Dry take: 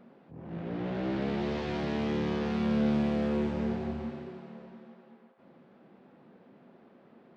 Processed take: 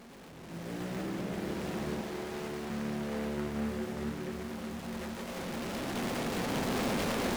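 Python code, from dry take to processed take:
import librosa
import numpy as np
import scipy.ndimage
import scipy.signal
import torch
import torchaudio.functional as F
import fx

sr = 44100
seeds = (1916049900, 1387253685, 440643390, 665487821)

y = fx.delta_mod(x, sr, bps=64000, step_db=-37.5)
y = fx.recorder_agc(y, sr, target_db=-20.5, rise_db_per_s=6.6, max_gain_db=30)
y = fx.echo_alternate(y, sr, ms=392, hz=970.0, feedback_pct=53, wet_db=-2.5)
y = fx.clip_asym(y, sr, top_db=-23.5, bottom_db=-20.0)
y = fx.highpass(y, sr, hz=410.0, slope=12, at=(2.01, 2.7))
y = y + 10.0 ** (-5.5 / 20.0) * np.pad(y, (int(678 * sr / 1000.0), 0))[:len(y)]
y = fx.noise_mod_delay(y, sr, seeds[0], noise_hz=1200.0, depth_ms=0.11)
y = y * 10.0 ** (-8.5 / 20.0)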